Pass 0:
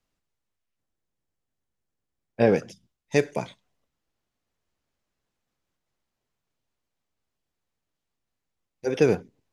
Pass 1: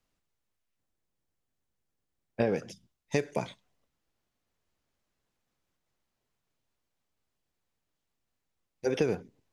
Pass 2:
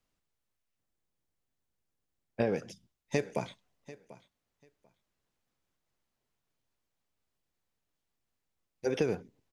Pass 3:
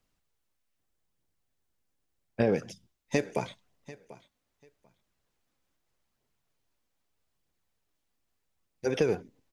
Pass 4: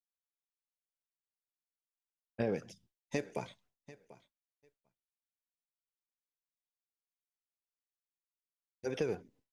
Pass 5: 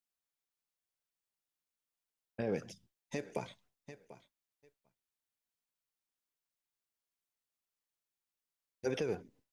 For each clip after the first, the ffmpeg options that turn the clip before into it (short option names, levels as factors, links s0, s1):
-af "acompressor=threshold=0.0631:ratio=6"
-af "aecho=1:1:741|1482:0.119|0.0202,volume=0.794"
-af "aphaser=in_gain=1:out_gain=1:delay=4.1:decay=0.26:speed=0.8:type=triangular,volume=1.41"
-af "agate=range=0.0224:threshold=0.00158:ratio=3:detection=peak,volume=0.398"
-af "alimiter=level_in=1.41:limit=0.0631:level=0:latency=1:release=200,volume=0.708,volume=1.33"